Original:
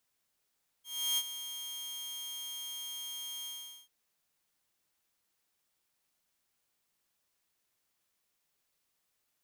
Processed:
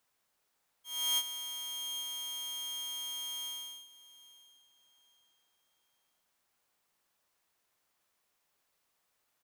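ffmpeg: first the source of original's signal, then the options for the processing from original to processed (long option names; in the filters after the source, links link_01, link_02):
-f lavfi -i "aevalsrc='0.0562*(2*mod(3220*t,1)-1)':duration=3.041:sample_rate=44100,afade=type=in:duration=0.335,afade=type=out:start_time=0.335:duration=0.049:silence=0.251,afade=type=out:start_time=2.62:duration=0.421"
-af "equalizer=frequency=910:width_type=o:width=2.3:gain=6.5,aecho=1:1:814|1628|2442:0.106|0.0328|0.0102"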